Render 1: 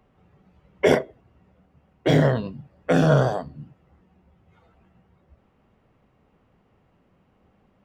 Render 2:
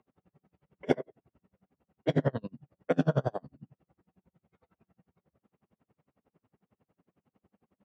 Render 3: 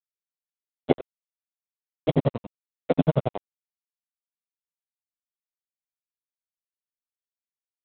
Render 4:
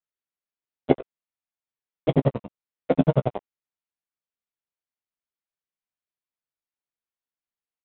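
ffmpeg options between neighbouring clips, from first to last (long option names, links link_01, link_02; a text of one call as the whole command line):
ffmpeg -i in.wav -af "highpass=200,aemphasis=mode=reproduction:type=bsi,aeval=exprs='val(0)*pow(10,-35*(0.5-0.5*cos(2*PI*11*n/s))/20)':channel_layout=same,volume=-5dB" out.wav
ffmpeg -i in.wav -af "aresample=8000,aeval=exprs='sgn(val(0))*max(abs(val(0))-0.0158,0)':channel_layout=same,aresample=44100,equalizer=frequency=1600:width=2.5:gain=-11.5,volume=6.5dB" out.wav
ffmpeg -i in.wav -filter_complex "[0:a]lowpass=3100,asplit=2[link_01][link_02];[link_02]adelay=15,volume=-12dB[link_03];[link_01][link_03]amix=inputs=2:normalize=0,volume=1.5dB" out.wav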